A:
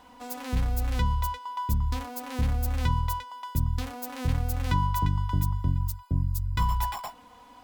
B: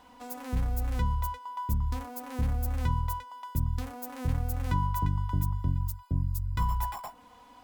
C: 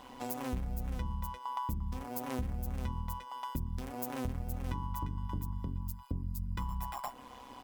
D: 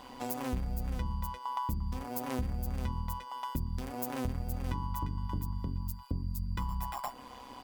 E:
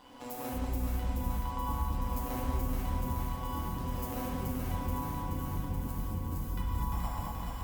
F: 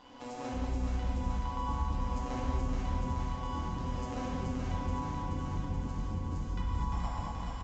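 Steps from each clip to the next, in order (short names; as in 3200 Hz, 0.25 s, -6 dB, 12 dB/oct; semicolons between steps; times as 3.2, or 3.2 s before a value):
dynamic EQ 3700 Hz, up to -7 dB, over -51 dBFS, Q 0.74; gain -2.5 dB
comb 3.7 ms, depth 32%; compressor 6:1, threshold -38 dBFS, peak gain reduction 14.5 dB; AM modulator 130 Hz, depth 55%; gain +7 dB
whine 4700 Hz -66 dBFS; gain +2 dB
echo with dull and thin repeats by turns 0.214 s, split 810 Hz, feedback 87%, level -2 dB; non-linear reverb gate 0.27 s flat, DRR -4.5 dB; gain -8 dB
downsampling 16000 Hz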